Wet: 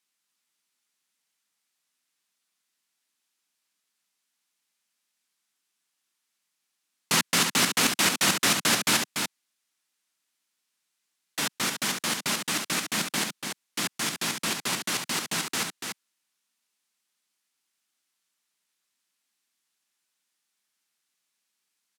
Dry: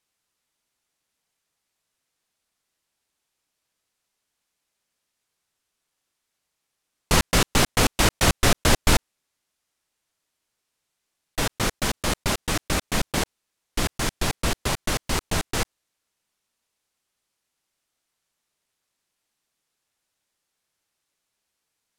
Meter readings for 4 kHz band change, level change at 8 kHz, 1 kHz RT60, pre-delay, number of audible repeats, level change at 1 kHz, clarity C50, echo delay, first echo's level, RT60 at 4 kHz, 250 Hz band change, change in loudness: +0.5 dB, +1.0 dB, no reverb, no reverb, 1, -4.0 dB, no reverb, 289 ms, -6.0 dB, no reverb, -5.0 dB, -1.5 dB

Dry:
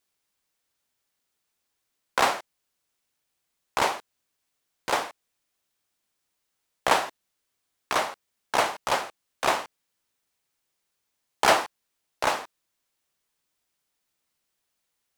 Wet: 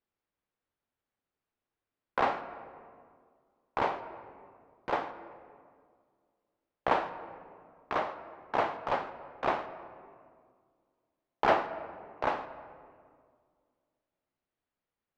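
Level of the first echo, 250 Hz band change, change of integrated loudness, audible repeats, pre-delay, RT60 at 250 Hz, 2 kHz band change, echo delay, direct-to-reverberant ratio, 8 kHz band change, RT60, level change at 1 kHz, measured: no echo, -2.0 dB, -6.5 dB, no echo, 3 ms, 2.3 s, -8.5 dB, no echo, 10.5 dB, under -25 dB, 2.0 s, -5.0 dB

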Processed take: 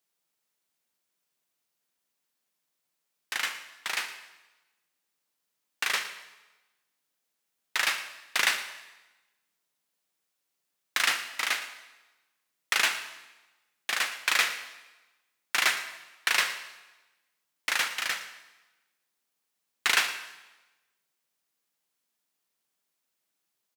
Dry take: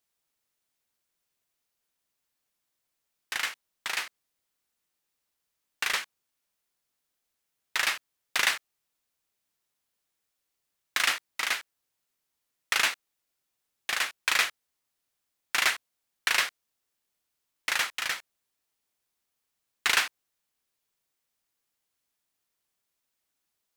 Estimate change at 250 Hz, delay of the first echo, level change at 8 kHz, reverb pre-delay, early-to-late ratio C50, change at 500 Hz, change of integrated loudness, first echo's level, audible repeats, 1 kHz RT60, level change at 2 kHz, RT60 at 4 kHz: +0.5 dB, 114 ms, +0.5 dB, 36 ms, 10.0 dB, +0.5 dB, 0.0 dB, -16.0 dB, 1, 1.1 s, +0.5 dB, 1.0 s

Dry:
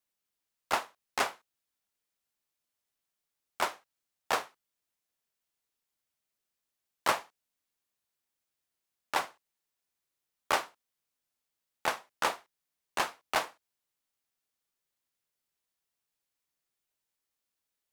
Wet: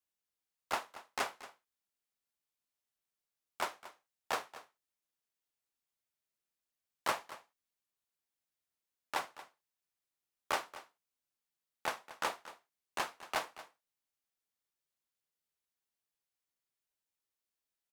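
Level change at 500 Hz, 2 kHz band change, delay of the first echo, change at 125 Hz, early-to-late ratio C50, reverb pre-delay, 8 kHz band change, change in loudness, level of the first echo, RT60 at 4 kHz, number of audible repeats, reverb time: -6.0 dB, -6.0 dB, 230 ms, -6.0 dB, no reverb, no reverb, -6.0 dB, -6.0 dB, -16.0 dB, no reverb, 1, no reverb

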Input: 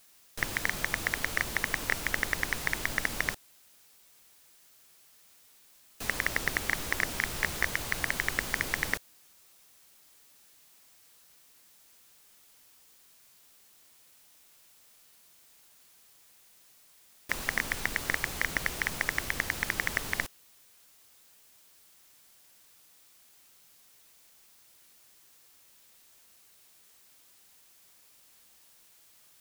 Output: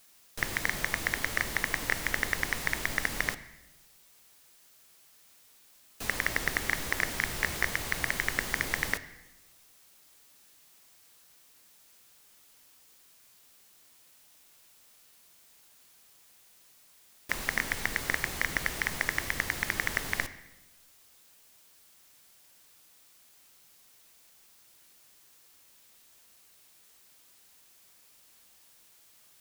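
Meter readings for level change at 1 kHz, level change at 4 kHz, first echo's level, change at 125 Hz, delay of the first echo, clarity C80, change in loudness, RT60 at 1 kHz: +0.5 dB, 0.0 dB, no echo, +0.5 dB, no echo, 16.0 dB, 0.0 dB, 0.95 s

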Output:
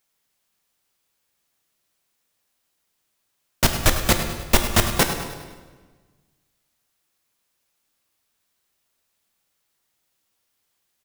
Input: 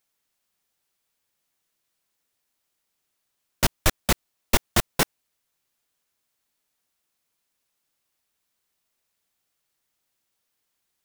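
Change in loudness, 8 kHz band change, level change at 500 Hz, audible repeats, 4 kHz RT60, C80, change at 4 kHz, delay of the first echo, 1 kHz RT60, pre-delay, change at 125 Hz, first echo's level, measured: +4.0 dB, +4.0 dB, +4.5 dB, 4, 1.1 s, 7.0 dB, +4.5 dB, 102 ms, 1.3 s, 8 ms, +5.0 dB, -12.5 dB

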